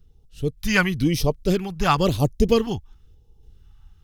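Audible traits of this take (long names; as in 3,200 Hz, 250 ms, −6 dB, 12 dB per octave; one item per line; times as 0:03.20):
sample-and-hold tremolo
phaser sweep stages 2, 0.98 Hz, lowest notch 430–1,500 Hz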